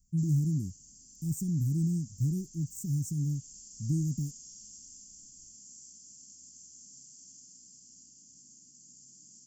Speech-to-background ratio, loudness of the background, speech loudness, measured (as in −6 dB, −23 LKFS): 18.0 dB, −50.0 LKFS, −32.0 LKFS